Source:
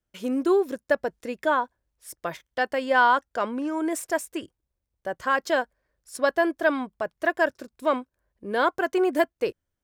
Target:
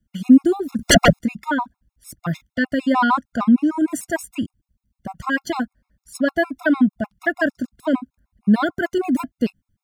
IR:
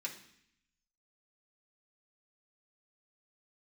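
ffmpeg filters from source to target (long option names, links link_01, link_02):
-filter_complex "[0:a]lowshelf=frequency=310:width_type=q:width=3:gain=11.5,asettb=1/sr,asplit=3[link_01][link_02][link_03];[link_01]atrim=end=0.794[link_04];[link_02]atrim=start=0.79:end=1.19,asetpts=PTS-STARTPTS,afade=type=in:duration=0.004:curve=qsin,afade=type=out:start_time=0.396:duration=0.004:curve=qsin,aeval=exprs='0.335*sin(PI/2*8.91*val(0)/0.335)':channel_layout=same[link_05];[link_03]atrim=start=1.186[link_06];[link_04][link_05]acrossfade=duration=0.004:curve1=hsin:curve2=qsin[link_07];[link_07][link_06]acrossfade=duration=0.004:curve1=qsin:curve2=hsin,afftfilt=real='re*gt(sin(2*PI*6.6*pts/sr)*(1-2*mod(floor(b*sr/1024/700),2)),0)':imag='im*gt(sin(2*PI*6.6*pts/sr)*(1-2*mod(floor(b*sr/1024/700),2)),0)':win_size=1024:overlap=0.75,volume=5dB"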